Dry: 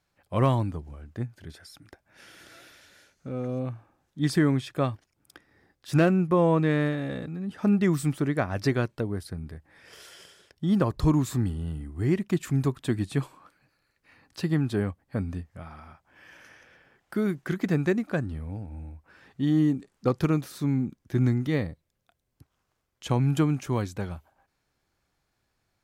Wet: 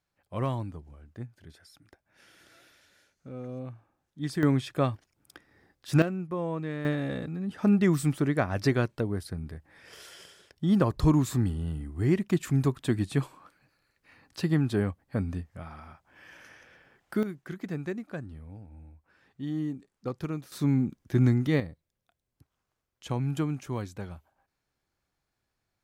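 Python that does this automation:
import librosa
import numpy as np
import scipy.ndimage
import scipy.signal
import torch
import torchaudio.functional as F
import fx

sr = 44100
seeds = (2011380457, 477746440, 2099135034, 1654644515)

y = fx.gain(x, sr, db=fx.steps((0.0, -7.5), (4.43, 0.0), (6.02, -10.5), (6.85, 0.0), (17.23, -9.5), (20.52, 1.0), (21.6, -6.0)))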